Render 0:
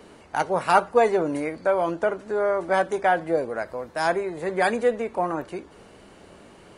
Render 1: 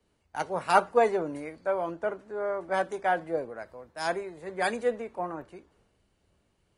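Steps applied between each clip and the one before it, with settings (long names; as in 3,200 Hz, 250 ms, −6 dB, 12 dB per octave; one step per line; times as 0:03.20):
multiband upward and downward expander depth 70%
level −7 dB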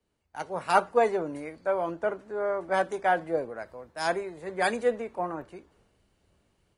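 automatic gain control gain up to 8.5 dB
level −6.5 dB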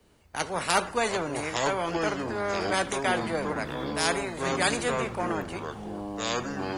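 delay with pitch and tempo change per echo 573 ms, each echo −6 semitones, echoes 3, each echo −6 dB
every bin compressed towards the loudest bin 2 to 1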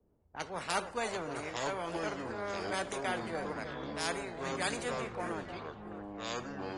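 echo through a band-pass that steps 305 ms, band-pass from 570 Hz, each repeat 1.4 octaves, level −7 dB
downsampling to 22,050 Hz
low-pass that shuts in the quiet parts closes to 630 Hz, open at −24 dBFS
level −9 dB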